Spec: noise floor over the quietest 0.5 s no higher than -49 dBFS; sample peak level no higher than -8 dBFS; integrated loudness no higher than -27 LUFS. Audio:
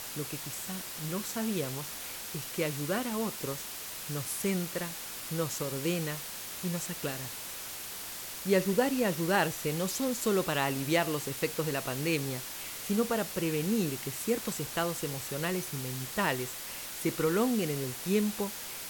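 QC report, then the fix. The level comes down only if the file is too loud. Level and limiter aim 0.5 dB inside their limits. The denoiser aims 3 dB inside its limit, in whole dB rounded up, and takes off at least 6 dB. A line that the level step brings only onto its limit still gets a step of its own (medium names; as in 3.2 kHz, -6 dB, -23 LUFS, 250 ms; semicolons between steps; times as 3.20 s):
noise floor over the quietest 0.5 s -41 dBFS: fail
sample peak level -13.5 dBFS: pass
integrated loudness -32.0 LUFS: pass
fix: noise reduction 11 dB, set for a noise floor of -41 dBFS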